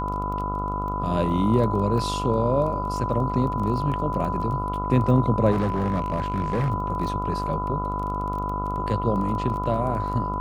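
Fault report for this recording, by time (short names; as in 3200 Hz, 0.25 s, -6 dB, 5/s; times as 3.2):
buzz 50 Hz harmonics 28 -30 dBFS
crackle 13/s -31 dBFS
tone 1000 Hz -28 dBFS
5.51–6.71 clipped -19.5 dBFS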